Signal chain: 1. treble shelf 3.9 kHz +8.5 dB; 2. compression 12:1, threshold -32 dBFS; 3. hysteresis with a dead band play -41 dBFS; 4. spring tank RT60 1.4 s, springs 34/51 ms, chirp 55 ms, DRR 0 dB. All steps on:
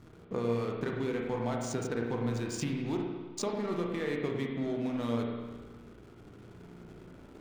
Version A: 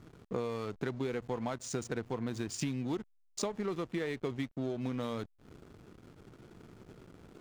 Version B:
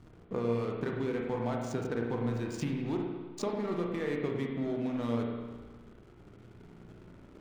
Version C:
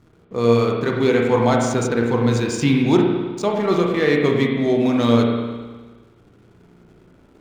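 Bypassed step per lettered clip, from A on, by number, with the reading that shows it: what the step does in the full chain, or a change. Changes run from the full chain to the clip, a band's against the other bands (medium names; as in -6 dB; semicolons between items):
4, 8 kHz band +3.5 dB; 1, 8 kHz band -7.5 dB; 2, mean gain reduction 10.0 dB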